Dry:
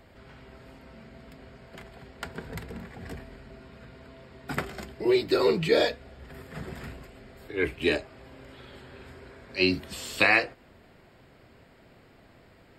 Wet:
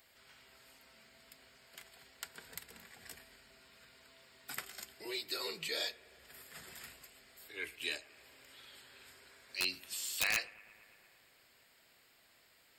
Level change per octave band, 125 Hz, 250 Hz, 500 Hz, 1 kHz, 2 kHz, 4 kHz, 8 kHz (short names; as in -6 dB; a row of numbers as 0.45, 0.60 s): -25.0, -24.5, -22.5, -16.5, -12.0, -5.5, +3.0 dB